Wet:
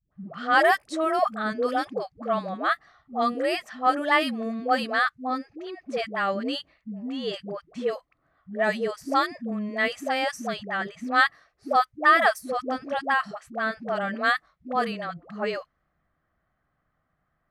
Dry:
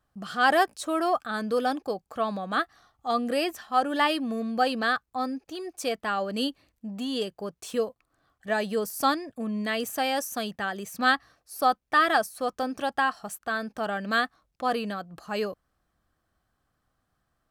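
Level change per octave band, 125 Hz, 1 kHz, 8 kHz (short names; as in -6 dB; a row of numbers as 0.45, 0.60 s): n/a, +1.5 dB, -7.0 dB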